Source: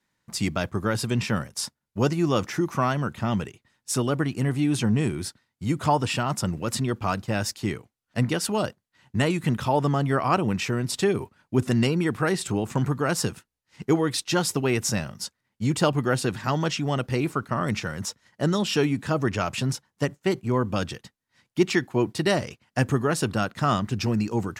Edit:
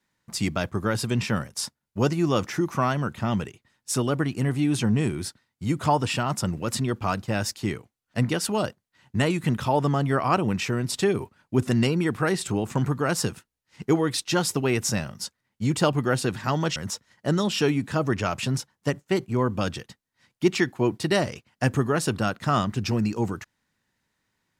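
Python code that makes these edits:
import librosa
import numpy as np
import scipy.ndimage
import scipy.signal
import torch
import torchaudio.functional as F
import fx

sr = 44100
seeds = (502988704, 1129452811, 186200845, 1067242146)

y = fx.edit(x, sr, fx.cut(start_s=16.76, length_s=1.15), tone=tone)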